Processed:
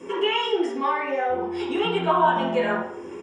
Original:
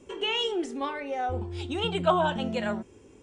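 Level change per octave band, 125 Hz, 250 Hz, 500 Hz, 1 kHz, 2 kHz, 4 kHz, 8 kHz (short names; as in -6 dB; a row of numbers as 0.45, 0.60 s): -2.0 dB, +4.0 dB, +6.0 dB, +7.5 dB, +6.5 dB, +1.5 dB, n/a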